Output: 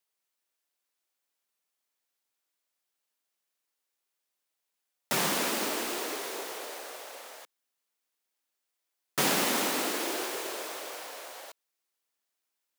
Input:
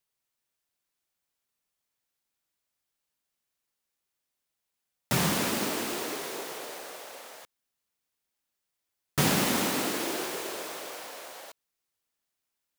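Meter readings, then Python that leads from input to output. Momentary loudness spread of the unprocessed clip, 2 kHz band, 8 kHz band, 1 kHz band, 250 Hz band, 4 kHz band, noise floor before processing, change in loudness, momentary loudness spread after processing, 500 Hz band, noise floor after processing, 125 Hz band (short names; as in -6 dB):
18 LU, 0.0 dB, 0.0 dB, 0.0 dB, -5.0 dB, 0.0 dB, -84 dBFS, -1.0 dB, 18 LU, -0.5 dB, -84 dBFS, -12.0 dB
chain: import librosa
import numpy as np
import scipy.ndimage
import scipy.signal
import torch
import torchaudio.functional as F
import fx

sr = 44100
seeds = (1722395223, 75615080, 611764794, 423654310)

y = scipy.signal.sosfilt(scipy.signal.butter(2, 300.0, 'highpass', fs=sr, output='sos'), x)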